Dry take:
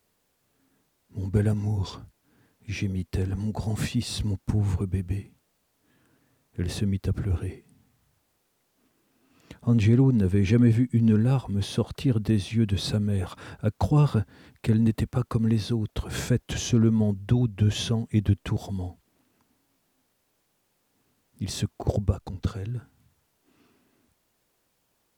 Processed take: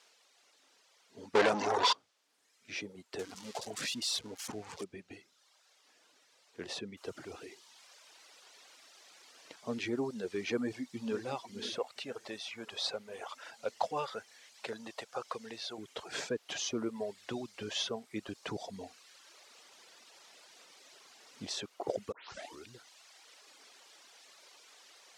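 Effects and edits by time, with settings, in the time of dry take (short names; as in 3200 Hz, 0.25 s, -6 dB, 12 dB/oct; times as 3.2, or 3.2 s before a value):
1.35–1.93 overdrive pedal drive 40 dB, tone 2600 Hz, clips at -11 dBFS
3.19–4.84 switching spikes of -21.5 dBFS
6.97 noise floor step -57 dB -48 dB
10.6–11.26 echo throw 0.51 s, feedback 70%, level -11 dB
11.78–15.78 resonant low shelf 430 Hz -8 dB, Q 1.5
18.4–21.48 low shelf 240 Hz +10.5 dB
22.12 tape start 0.59 s
whole clip: Chebyshev band-pass 480–5600 Hz, order 2; reverb removal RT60 1.1 s; gain -2.5 dB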